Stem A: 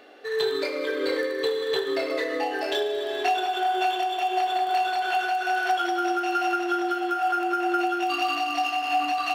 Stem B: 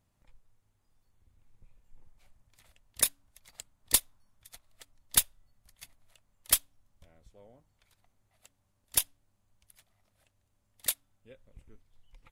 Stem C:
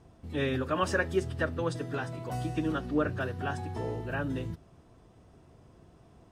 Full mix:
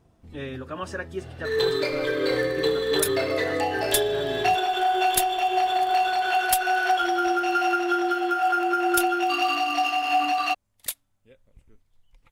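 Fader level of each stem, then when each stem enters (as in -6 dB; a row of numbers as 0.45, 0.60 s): +2.0, -0.5, -4.5 dB; 1.20, 0.00, 0.00 s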